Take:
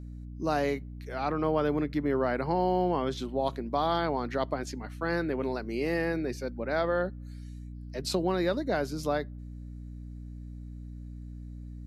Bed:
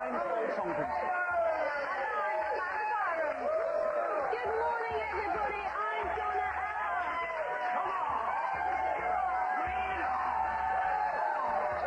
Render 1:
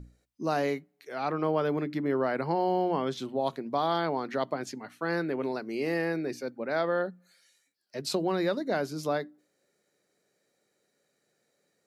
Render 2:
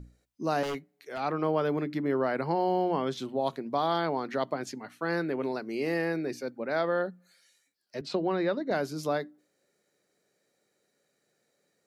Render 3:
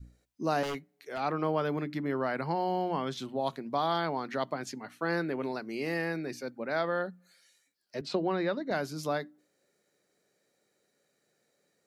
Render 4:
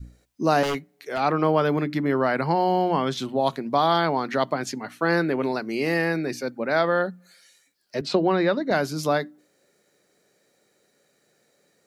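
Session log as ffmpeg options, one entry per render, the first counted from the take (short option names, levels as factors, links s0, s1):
-af "bandreject=f=60:t=h:w=6,bandreject=f=120:t=h:w=6,bandreject=f=180:t=h:w=6,bandreject=f=240:t=h:w=6,bandreject=f=300:t=h:w=6"
-filter_complex "[0:a]asettb=1/sr,asplit=3[s0][s1][s2];[s0]atrim=end=0.634[s3];[s1]atrim=start=0.63:end=1.2,asetpts=PTS-STARTPTS,afade=t=in:d=0.004:c=qsin,afade=t=out:st=0.566:d=0.004:c=qsin,aeval=exprs='0.0447*(abs(mod(val(0)/0.0447+3,4)-2)-1)':c=same[s4];[s2]atrim=start=1.196[s5];[s3][s4]acrossfade=d=0.004:c1=hsin:c2=qsin[s6];[s6][s5]acrossfade=d=0.004:c1=qsin:c2=hsin,asettb=1/sr,asplit=3[s7][s8][s9];[s7]atrim=end=8.014[s10];[s8]atrim=start=8.01:end=8.71,asetpts=PTS-STARTPTS,afade=t=in:d=0.004:c=qsin,afade=t=out:st=0.696:d=0.004:c=qsin,highpass=140,lowpass=3300[s11];[s9]atrim=start=8.706[s12];[s10][s11]acrossfade=d=0.004:c1=hsin:c2=qsin[s13];[s13][s12]acrossfade=d=0.004:c1=qsin:c2=hsin"
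-af "adynamicequalizer=threshold=0.00891:dfrequency=420:dqfactor=1:tfrequency=420:tqfactor=1:attack=5:release=100:ratio=0.375:range=3:mode=cutabove:tftype=bell"
-af "volume=2.82"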